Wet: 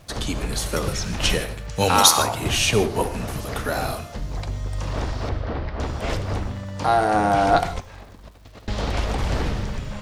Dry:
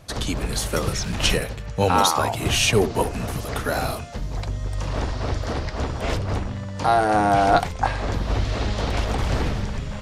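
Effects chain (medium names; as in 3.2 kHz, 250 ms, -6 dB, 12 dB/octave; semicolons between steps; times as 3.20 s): 1.69–2.23 s: treble shelf 2.5 kHz +11.5 dB; 7.69–8.68 s: compressor with a negative ratio -35 dBFS, ratio -0.5; crackle 470 per s -46 dBFS; 5.29–5.80 s: distance through air 290 m; gated-style reverb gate 180 ms flat, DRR 11 dB; trim -1 dB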